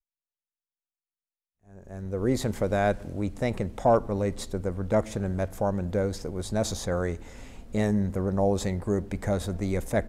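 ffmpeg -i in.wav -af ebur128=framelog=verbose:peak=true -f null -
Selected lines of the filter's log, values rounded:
Integrated loudness:
  I:         -28.2 LUFS
  Threshold: -38.6 LUFS
Loudness range:
  LRA:         3.2 LU
  Threshold: -48.8 LUFS
  LRA low:   -30.9 LUFS
  LRA high:  -27.6 LUFS
True peak:
  Peak:      -10.1 dBFS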